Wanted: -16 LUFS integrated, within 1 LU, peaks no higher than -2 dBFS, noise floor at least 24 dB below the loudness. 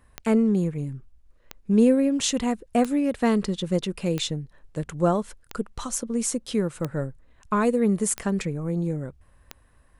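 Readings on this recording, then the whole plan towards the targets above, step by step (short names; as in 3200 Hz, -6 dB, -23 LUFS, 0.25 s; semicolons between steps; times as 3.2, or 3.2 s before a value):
clicks 8; loudness -25.0 LUFS; peak -8.5 dBFS; loudness target -16.0 LUFS
-> de-click; gain +9 dB; limiter -2 dBFS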